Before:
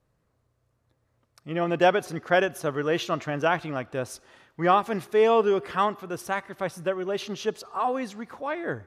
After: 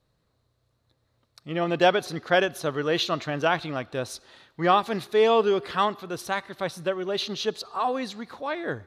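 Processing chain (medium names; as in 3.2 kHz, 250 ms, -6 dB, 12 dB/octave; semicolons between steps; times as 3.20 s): peaking EQ 4 kHz +13 dB 0.48 oct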